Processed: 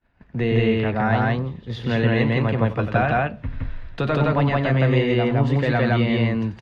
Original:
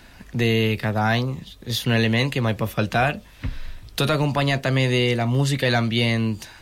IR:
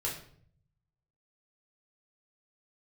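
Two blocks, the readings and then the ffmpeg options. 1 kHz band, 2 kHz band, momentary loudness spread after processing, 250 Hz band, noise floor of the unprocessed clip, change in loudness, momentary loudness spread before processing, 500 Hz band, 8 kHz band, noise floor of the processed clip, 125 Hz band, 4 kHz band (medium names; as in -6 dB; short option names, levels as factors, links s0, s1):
+2.0 dB, -1.0 dB, 10 LU, +2.0 dB, -46 dBFS, +1.0 dB, 13 LU, +2.5 dB, under -20 dB, -48 dBFS, +2.0 dB, -8.0 dB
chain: -filter_complex "[0:a]lowpass=1900,agate=range=0.0224:threshold=0.0158:ratio=3:detection=peak,aecho=1:1:90.38|166.2:0.316|1,asplit=2[s0][s1];[1:a]atrim=start_sample=2205[s2];[s1][s2]afir=irnorm=-1:irlink=0,volume=0.075[s3];[s0][s3]amix=inputs=2:normalize=0,volume=0.841"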